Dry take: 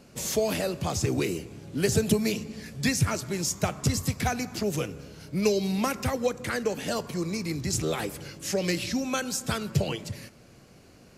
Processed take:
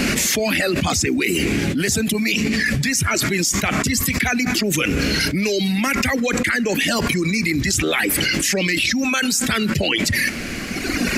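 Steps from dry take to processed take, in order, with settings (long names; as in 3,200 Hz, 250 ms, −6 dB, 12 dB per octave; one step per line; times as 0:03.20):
reverb reduction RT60 2 s
octave-band graphic EQ 125/250/500/1,000/2,000 Hz −10/+6/−6/−6/+11 dB
envelope flattener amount 100%
level −2 dB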